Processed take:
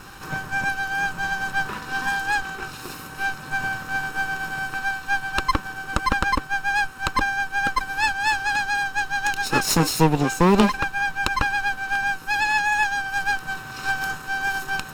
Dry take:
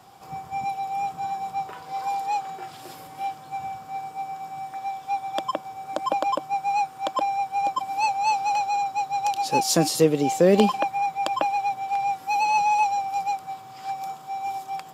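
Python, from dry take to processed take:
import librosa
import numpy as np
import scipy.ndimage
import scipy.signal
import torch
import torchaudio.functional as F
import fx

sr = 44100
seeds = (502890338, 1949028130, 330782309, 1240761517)

p1 = fx.lower_of_two(x, sr, delay_ms=0.74)
p2 = fx.rider(p1, sr, range_db=10, speed_s=0.5)
p3 = p1 + (p2 * 10.0 ** (0.5 / 20.0))
y = p3 * 10.0 ** (-1.0 / 20.0)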